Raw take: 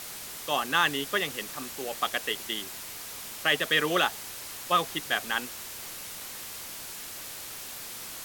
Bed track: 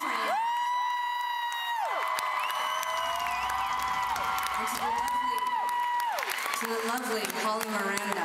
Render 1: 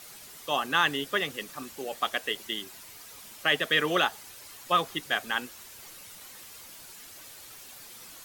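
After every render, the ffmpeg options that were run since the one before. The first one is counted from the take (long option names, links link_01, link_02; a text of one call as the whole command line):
ffmpeg -i in.wav -af "afftdn=noise_reduction=9:noise_floor=-41" out.wav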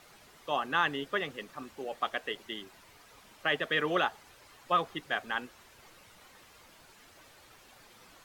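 ffmpeg -i in.wav -af "lowpass=frequency=1400:poles=1,equalizer=frequency=200:width=0.46:gain=-3.5" out.wav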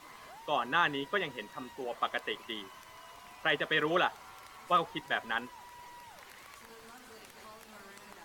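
ffmpeg -i in.wav -i bed.wav -filter_complex "[1:a]volume=-23dB[link_01];[0:a][link_01]amix=inputs=2:normalize=0" out.wav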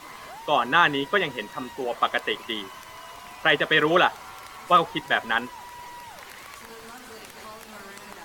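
ffmpeg -i in.wav -af "volume=9.5dB" out.wav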